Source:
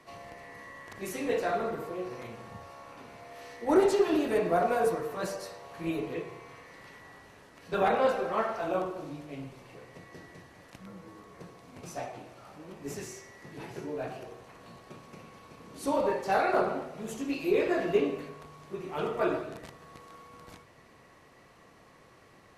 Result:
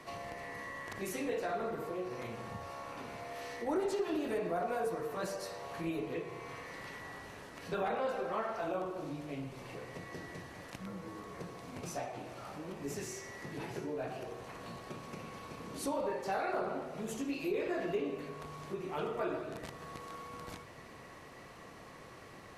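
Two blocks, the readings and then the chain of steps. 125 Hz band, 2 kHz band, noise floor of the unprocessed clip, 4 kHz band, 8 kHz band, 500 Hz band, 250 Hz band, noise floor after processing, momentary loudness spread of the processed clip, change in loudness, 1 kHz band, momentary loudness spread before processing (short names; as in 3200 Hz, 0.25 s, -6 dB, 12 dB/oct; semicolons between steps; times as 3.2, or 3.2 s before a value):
-2.0 dB, -5.0 dB, -57 dBFS, -3.5 dB, -1.5 dB, -7.0 dB, -6.0 dB, -52 dBFS, 12 LU, -9.0 dB, -6.5 dB, 23 LU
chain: in parallel at -2 dB: limiter -22.5 dBFS, peak gain reduction 10 dB; on the sum: compressor 2:1, threshold -42 dBFS, peak gain reduction 14.5 dB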